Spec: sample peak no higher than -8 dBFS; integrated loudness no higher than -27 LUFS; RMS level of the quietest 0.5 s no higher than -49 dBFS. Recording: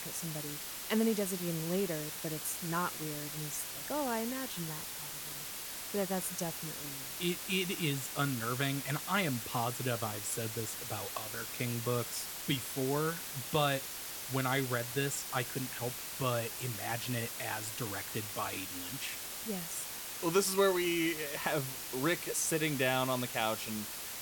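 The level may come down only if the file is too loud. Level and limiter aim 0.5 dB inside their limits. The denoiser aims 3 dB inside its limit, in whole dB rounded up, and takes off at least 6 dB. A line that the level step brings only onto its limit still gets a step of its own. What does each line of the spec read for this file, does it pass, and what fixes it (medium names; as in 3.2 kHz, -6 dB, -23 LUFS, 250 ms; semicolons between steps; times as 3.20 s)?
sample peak -16.0 dBFS: pass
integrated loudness -34.5 LUFS: pass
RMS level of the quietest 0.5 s -43 dBFS: fail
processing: noise reduction 9 dB, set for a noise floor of -43 dBFS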